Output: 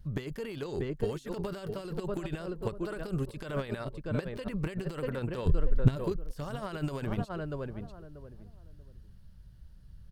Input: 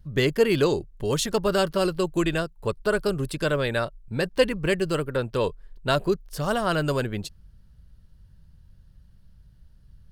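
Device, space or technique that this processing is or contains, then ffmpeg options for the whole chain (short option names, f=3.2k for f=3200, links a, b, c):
de-esser from a sidechain: -filter_complex "[0:a]asplit=3[a][b][c];[a]afade=t=out:st=5.45:d=0.02[d];[b]asubboost=boost=11:cutoff=190,afade=t=in:st=5.45:d=0.02,afade=t=out:st=5.95:d=0.02[e];[c]afade=t=in:st=5.95:d=0.02[f];[d][e][f]amix=inputs=3:normalize=0,asplit=2[g][h];[h]adelay=636,lowpass=f=900:p=1,volume=-11dB,asplit=2[i][j];[j]adelay=636,lowpass=f=900:p=1,volume=0.25,asplit=2[k][l];[l]adelay=636,lowpass=f=900:p=1,volume=0.25[m];[g][i][k][m]amix=inputs=4:normalize=0,asplit=2[n][o];[o]highpass=5.4k,apad=whole_len=530298[p];[n][p]sidechaincompress=threshold=-60dB:ratio=8:attack=4.9:release=22"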